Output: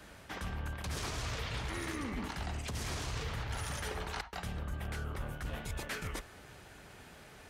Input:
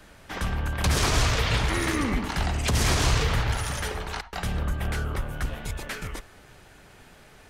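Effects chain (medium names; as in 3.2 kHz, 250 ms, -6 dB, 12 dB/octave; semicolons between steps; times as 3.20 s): high-pass 40 Hz; reverse; compression 10:1, threshold -33 dBFS, peak gain reduction 15 dB; reverse; trim -2 dB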